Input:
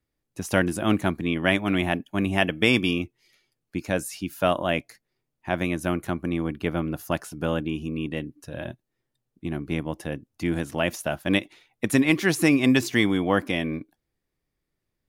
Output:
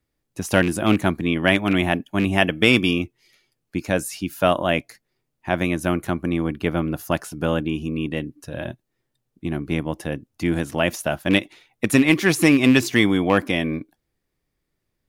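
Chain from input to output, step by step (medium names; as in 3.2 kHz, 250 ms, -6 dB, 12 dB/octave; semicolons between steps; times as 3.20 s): rattle on loud lows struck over -24 dBFS, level -21 dBFS; trim +4 dB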